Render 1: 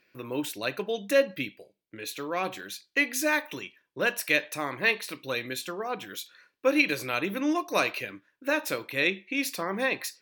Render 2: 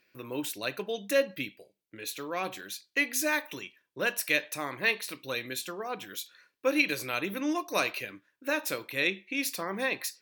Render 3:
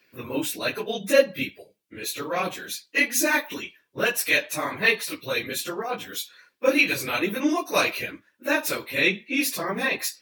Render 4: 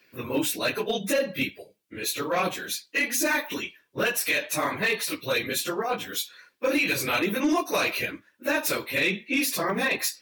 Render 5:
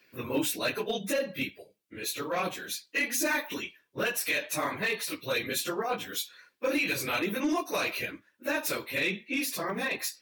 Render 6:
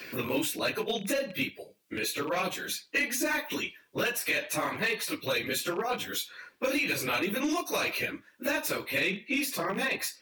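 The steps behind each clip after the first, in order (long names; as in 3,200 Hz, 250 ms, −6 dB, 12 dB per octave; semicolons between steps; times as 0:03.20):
high-shelf EQ 4,400 Hz +5.5 dB; level −3.5 dB
random phases in long frames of 50 ms; level +6.5 dB
brickwall limiter −16.5 dBFS, peak gain reduction 11.5 dB; hard clipping −19.5 dBFS, distortion −23 dB; level +2 dB
speech leveller 2 s; level −5 dB
loose part that buzzes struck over −41 dBFS, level −37 dBFS; multiband upward and downward compressor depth 70%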